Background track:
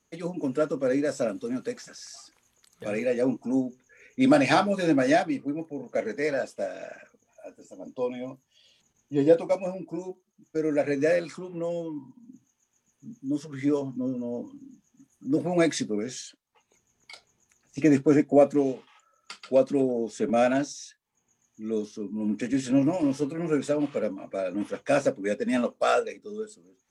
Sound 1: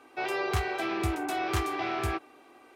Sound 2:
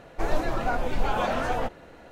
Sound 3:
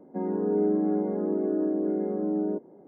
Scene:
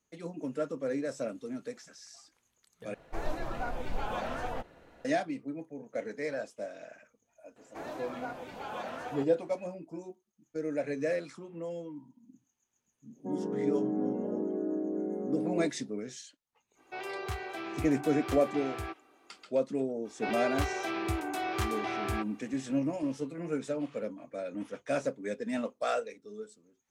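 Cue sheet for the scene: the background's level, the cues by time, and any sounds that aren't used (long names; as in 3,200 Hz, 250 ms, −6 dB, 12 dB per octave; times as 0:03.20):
background track −8 dB
0:02.94: overwrite with 2 −9 dB
0:07.56: mix in 2 −12 dB + Bessel high-pass filter 190 Hz
0:13.10: mix in 3 −6.5 dB, fades 0.10 s + low-pass that shuts in the quiet parts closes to 380 Hz, open at −21.5 dBFS
0:16.75: mix in 1 −8 dB, fades 0.05 s
0:20.05: mix in 1 −3 dB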